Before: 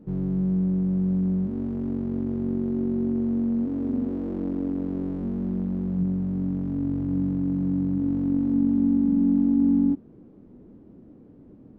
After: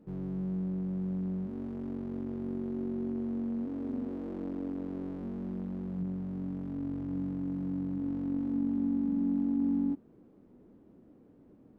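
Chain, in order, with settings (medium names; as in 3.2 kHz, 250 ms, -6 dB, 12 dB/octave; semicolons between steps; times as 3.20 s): bass shelf 380 Hz -9 dB; trim -3 dB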